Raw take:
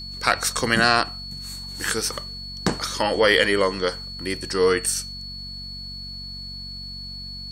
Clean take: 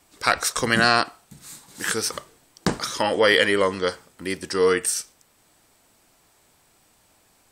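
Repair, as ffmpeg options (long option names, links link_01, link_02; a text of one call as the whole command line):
ffmpeg -i in.wav -af "bandreject=frequency=46.8:width_type=h:width=4,bandreject=frequency=93.6:width_type=h:width=4,bandreject=frequency=140.4:width_type=h:width=4,bandreject=frequency=187.2:width_type=h:width=4,bandreject=frequency=234:width_type=h:width=4,bandreject=frequency=4400:width=30" out.wav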